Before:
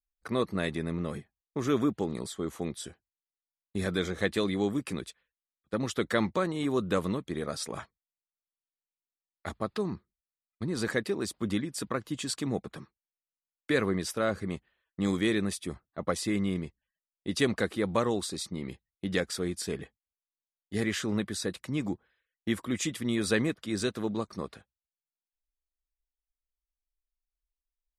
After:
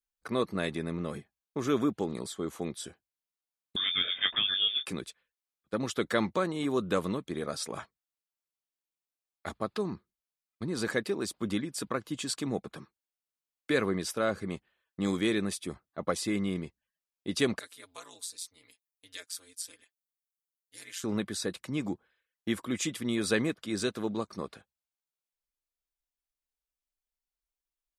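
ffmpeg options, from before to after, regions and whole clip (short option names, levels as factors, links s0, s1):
-filter_complex "[0:a]asettb=1/sr,asplit=3[s0][s1][s2];[s0]atrim=end=3.764[s3];[s1]atrim=start=3.76:end=4.86,asetpts=PTS-STARTPTS,afade=t=in:d=0.004:c=qsin,afade=t=out:st=1.096:d=0.004:c=qsin,aemphasis=mode=production:type=75fm,asplit=2[s4][s5];[s5]adelay=22,volume=0.335[s6];[s4][s6]amix=inputs=2:normalize=0,atrim=end_sample=48510,lowpass=f=3100:t=q:w=0.5098,lowpass=f=3100:t=q:w=0.6013,lowpass=f=3100:t=q:w=0.9,lowpass=f=3100:t=q:w=2.563,afreqshift=-3700[s7];[s2]atrim=start=4.856[s8];[s3][s7]acrossfade=d=0.004:c1=hsin:c2=qsin[s9];[s9][s8]acrossfade=d=0.004:c1=qsin:c2=hsin,asettb=1/sr,asplit=3[s10][s11][s12];[s10]atrim=end=17.594[s13];[s11]atrim=start=17.59:end=21.04,asetpts=PTS-STARTPTS,afade=t=in:d=0.004:c=qsin,afade=t=out:st=3.446:d=0.004:c=qsin,aderivative,aecho=1:1:5.4:0.65,atrim=end_sample=152145,aeval=exprs='val(0)*sin(2*PI*90*n/s)':c=same[s14];[s12]atrim=start=21.036[s15];[s13][s14]acrossfade=d=0.004:c1=hsin:c2=qsin[s16];[s16][s15]acrossfade=d=0.004:c1=qsin:c2=hsin,lowshelf=f=97:g=-9.5,bandreject=f=1900:w=17"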